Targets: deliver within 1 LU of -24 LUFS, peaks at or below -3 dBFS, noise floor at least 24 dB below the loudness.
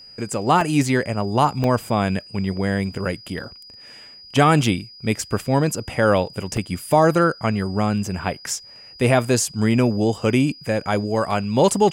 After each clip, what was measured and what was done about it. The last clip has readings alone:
dropouts 6; longest dropout 1.5 ms; steady tone 4.9 kHz; tone level -41 dBFS; loudness -21.0 LUFS; peak level -4.5 dBFS; loudness target -24.0 LUFS
-> interpolate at 0.61/1.64/3.44/6.57/9.71/11.31 s, 1.5 ms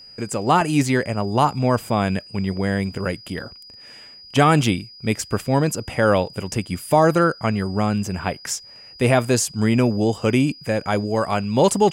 dropouts 0; steady tone 4.9 kHz; tone level -41 dBFS
-> band-stop 4.9 kHz, Q 30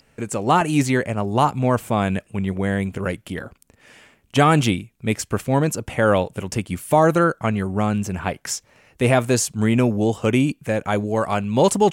steady tone not found; loudness -21.0 LUFS; peak level -4.5 dBFS; loudness target -24.0 LUFS
-> trim -3 dB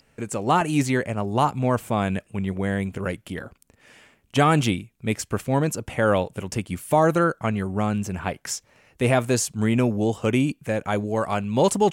loudness -24.0 LUFS; peak level -7.5 dBFS; noise floor -63 dBFS

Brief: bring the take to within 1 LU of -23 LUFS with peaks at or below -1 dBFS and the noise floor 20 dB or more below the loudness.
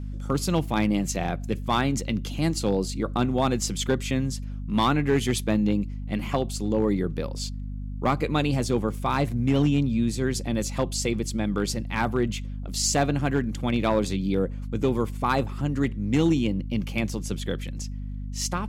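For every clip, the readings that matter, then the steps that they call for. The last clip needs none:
clipped samples 0.4%; clipping level -14.0 dBFS; hum 50 Hz; highest harmonic 250 Hz; hum level -30 dBFS; loudness -26.0 LUFS; peak level -14.0 dBFS; loudness target -23.0 LUFS
-> clip repair -14 dBFS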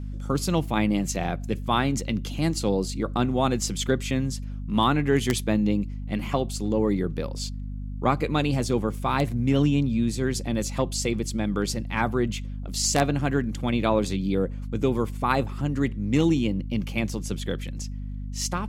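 clipped samples 0.0%; hum 50 Hz; highest harmonic 250 Hz; hum level -30 dBFS
-> de-hum 50 Hz, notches 5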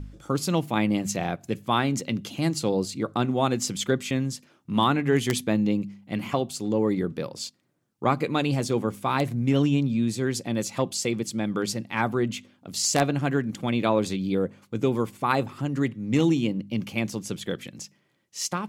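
hum not found; loudness -26.5 LUFS; peak level -5.0 dBFS; loudness target -23.0 LUFS
-> trim +3.5 dB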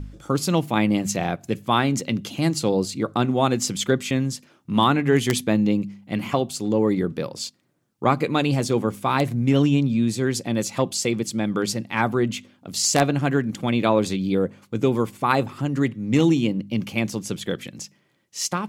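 loudness -23.0 LUFS; peak level -1.5 dBFS; noise floor -63 dBFS

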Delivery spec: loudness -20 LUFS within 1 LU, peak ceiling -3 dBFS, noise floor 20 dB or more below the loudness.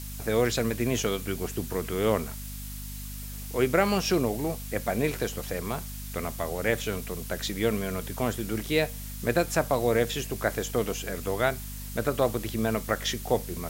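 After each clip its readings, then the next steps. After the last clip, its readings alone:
hum 50 Hz; highest harmonic 250 Hz; hum level -37 dBFS; noise floor -38 dBFS; noise floor target -49 dBFS; loudness -29.0 LUFS; peak level -9.0 dBFS; loudness target -20.0 LUFS
-> de-hum 50 Hz, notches 5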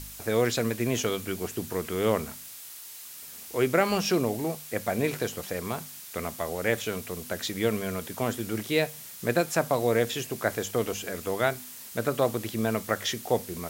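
hum not found; noise floor -44 dBFS; noise floor target -49 dBFS
-> noise reduction 6 dB, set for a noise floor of -44 dBFS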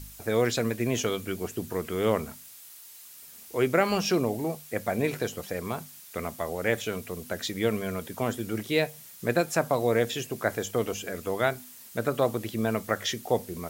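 noise floor -48 dBFS; noise floor target -49 dBFS
-> noise reduction 6 dB, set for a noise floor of -48 dBFS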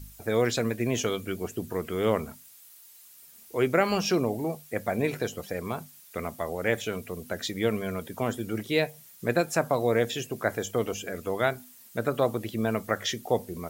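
noise floor -52 dBFS; loudness -29.0 LUFS; peak level -9.5 dBFS; loudness target -20.0 LUFS
-> trim +9 dB; peak limiter -3 dBFS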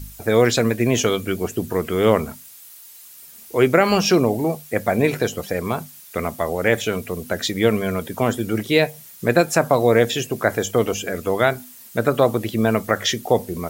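loudness -20.5 LUFS; peak level -3.0 dBFS; noise floor -43 dBFS

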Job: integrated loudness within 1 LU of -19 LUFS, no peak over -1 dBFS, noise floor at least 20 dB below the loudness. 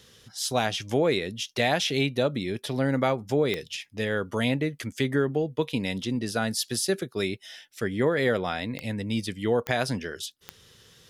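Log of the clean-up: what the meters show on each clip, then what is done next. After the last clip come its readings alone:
clicks found 4; loudness -27.5 LUFS; peak level -10.0 dBFS; loudness target -19.0 LUFS
-> de-click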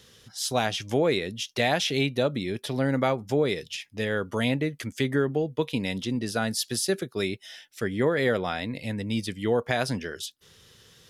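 clicks found 0; loudness -27.5 LUFS; peak level -10.0 dBFS; loudness target -19.0 LUFS
-> trim +8.5 dB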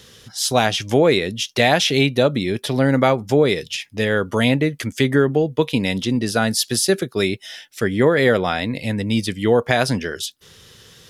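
loudness -19.0 LUFS; peak level -1.5 dBFS; noise floor -48 dBFS

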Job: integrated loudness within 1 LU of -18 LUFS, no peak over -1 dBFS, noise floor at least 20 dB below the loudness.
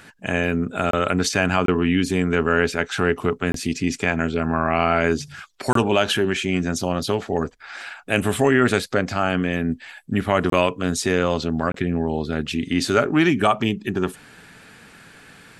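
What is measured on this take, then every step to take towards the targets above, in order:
dropouts 6; longest dropout 23 ms; loudness -21.5 LUFS; peak level -3.5 dBFS; loudness target -18.0 LUFS
-> interpolate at 0.91/1.66/3.52/5.73/10.50/11.72 s, 23 ms; trim +3.5 dB; peak limiter -1 dBFS

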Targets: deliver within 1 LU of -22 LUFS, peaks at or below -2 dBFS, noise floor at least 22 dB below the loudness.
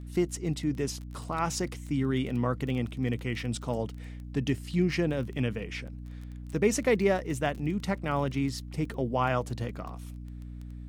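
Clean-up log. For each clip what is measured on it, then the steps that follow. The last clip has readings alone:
tick rate 19 per s; hum 60 Hz; highest harmonic 300 Hz; hum level -38 dBFS; loudness -30.5 LUFS; peak level -12.0 dBFS; loudness target -22.0 LUFS
-> de-click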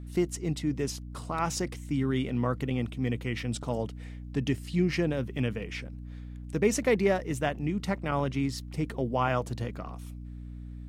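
tick rate 0.092 per s; hum 60 Hz; highest harmonic 300 Hz; hum level -38 dBFS
-> de-hum 60 Hz, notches 5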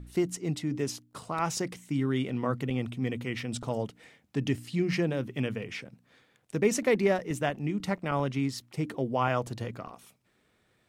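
hum not found; loudness -31.0 LUFS; peak level -12.5 dBFS; loudness target -22.0 LUFS
-> trim +9 dB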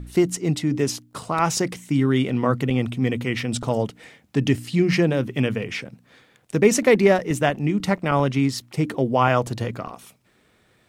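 loudness -22.0 LUFS; peak level -3.5 dBFS; noise floor -61 dBFS

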